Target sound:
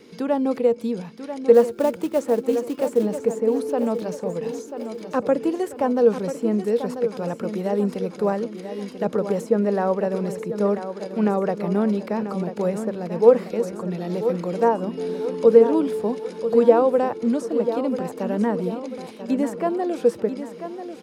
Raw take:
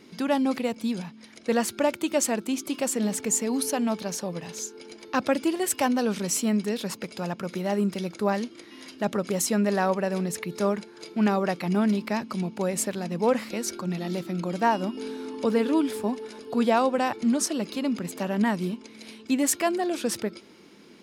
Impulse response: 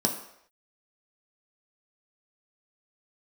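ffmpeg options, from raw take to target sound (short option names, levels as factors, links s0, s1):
-filter_complex "[0:a]acrossover=split=630|1400[s0][s1][s2];[s2]acompressor=threshold=0.00447:ratio=6[s3];[s0][s1][s3]amix=inputs=3:normalize=0,asettb=1/sr,asplit=3[s4][s5][s6];[s4]atrim=end=1.544[s7];[s5]atrim=start=1.54:end=3.03,asetpts=PTS-STARTPTS,afade=t=in:d=0.004:c=qsin,afade=t=out:st=1.486:d=0.004:c=qsin,acrusher=bits=5:mode=log:mix=0:aa=0.000001[s8];[s6]atrim=start=3.026[s9];[s7][s8]acrossfade=d=0.004:c1=hsin:c2=qsin[s10];[s10][s9]acrossfade=d=0.004:c1=qsin:c2=hsin,equalizer=f=470:t=o:w=0.25:g=14,aecho=1:1:990|1980|2970|3960|4950:0.316|0.145|0.0669|0.0308|0.0142,volume=1.12"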